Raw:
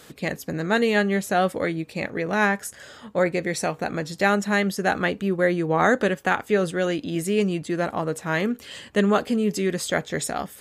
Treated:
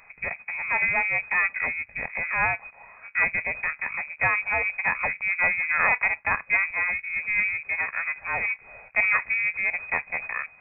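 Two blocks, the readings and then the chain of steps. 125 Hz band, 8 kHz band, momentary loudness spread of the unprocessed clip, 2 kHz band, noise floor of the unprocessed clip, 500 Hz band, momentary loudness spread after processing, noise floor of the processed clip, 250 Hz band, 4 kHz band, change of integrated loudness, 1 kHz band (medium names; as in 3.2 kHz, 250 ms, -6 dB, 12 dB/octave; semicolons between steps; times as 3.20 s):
-16.0 dB, under -40 dB, 9 LU, +5.0 dB, -48 dBFS, -16.5 dB, 9 LU, -53 dBFS, -25.0 dB, under -40 dB, -0.5 dB, -4.5 dB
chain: partial rectifier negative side -12 dB; frequency inversion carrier 2.5 kHz; peaking EQ 330 Hz -14 dB 0.6 oct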